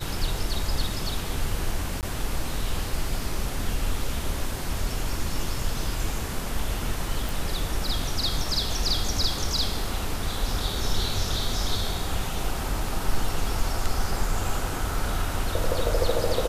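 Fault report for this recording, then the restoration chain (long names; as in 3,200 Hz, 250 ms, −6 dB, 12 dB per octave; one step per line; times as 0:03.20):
0:02.01–0:02.03: drop-out 18 ms
0:07.29: click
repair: click removal
repair the gap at 0:02.01, 18 ms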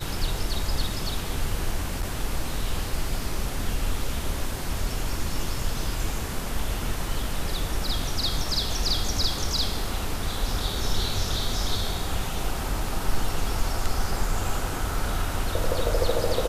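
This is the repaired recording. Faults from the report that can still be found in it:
none of them is left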